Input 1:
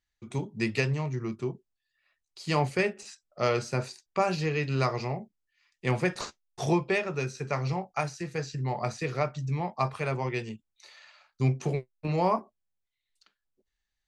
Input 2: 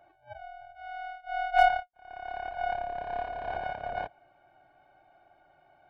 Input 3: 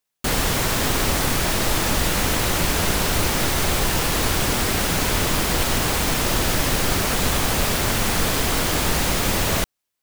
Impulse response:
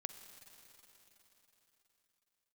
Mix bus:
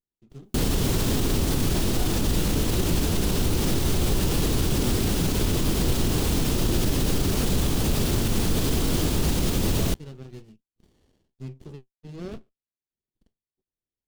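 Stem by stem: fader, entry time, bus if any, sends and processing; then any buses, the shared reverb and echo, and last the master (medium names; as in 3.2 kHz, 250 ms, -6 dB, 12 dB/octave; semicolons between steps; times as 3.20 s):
-4.5 dB, 0.00 s, no send, de-esser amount 80%; bass shelf 390 Hz -10 dB; sliding maximum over 33 samples
-13.0 dB, 0.40 s, no send, none
+1.0 dB, 0.30 s, no send, tilt shelf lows +4.5 dB, about 1.2 kHz; peak limiter -14 dBFS, peak gain reduction 9 dB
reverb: none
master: high-order bell 1.1 kHz -8.5 dB 2.4 oct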